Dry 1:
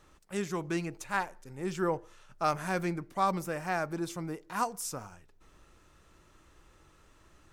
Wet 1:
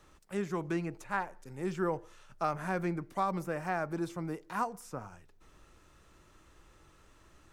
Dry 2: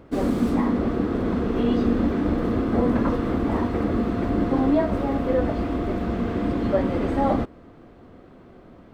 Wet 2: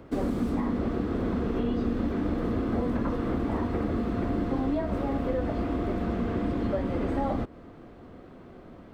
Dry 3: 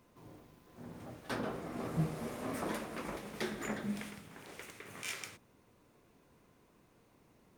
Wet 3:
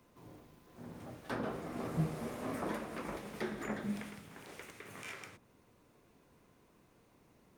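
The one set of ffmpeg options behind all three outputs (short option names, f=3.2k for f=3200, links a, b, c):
-filter_complex "[0:a]acrossover=split=120|2200[a][b][c];[a]acompressor=threshold=-32dB:ratio=4[d];[b]acompressor=threshold=-27dB:ratio=4[e];[c]acompressor=threshold=-54dB:ratio=4[f];[d][e][f]amix=inputs=3:normalize=0"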